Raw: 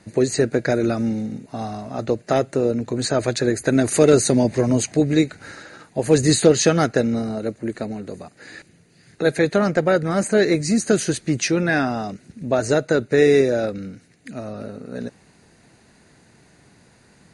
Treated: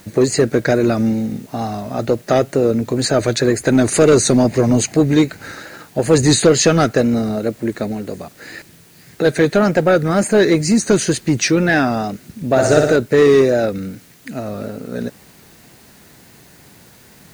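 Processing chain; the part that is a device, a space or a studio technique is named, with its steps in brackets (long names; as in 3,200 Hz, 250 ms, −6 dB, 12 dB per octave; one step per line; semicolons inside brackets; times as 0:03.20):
compact cassette (soft clipping −10 dBFS, distortion −16 dB; low-pass filter 9,700 Hz; tape wow and flutter; white noise bed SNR 33 dB)
0:12.50–0:12.96: flutter between parallel walls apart 10.3 metres, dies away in 0.87 s
level +6 dB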